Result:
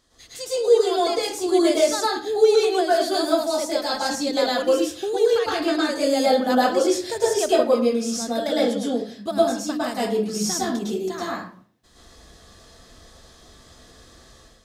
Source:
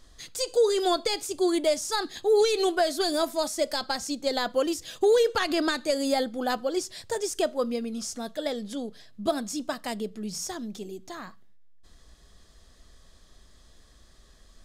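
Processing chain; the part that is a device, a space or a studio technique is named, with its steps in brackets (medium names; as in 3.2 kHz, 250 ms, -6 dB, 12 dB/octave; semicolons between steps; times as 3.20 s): far laptop microphone (reverberation RT60 0.50 s, pre-delay 102 ms, DRR -6.5 dB; high-pass 120 Hz 6 dB/octave; level rider gain up to 9 dB); 4.48–5.33 s: dynamic bell 760 Hz, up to -4 dB, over -22 dBFS, Q 0.8; trim -5 dB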